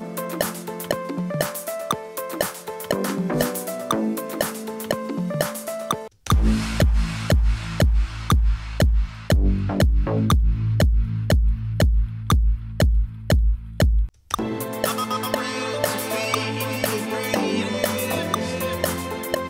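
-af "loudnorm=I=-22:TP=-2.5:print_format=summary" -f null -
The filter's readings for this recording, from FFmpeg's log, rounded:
Input Integrated:    -23.6 LUFS
Input True Peak:      -7.3 dBTP
Input LRA:             4.4 LU
Input Threshold:     -33.6 LUFS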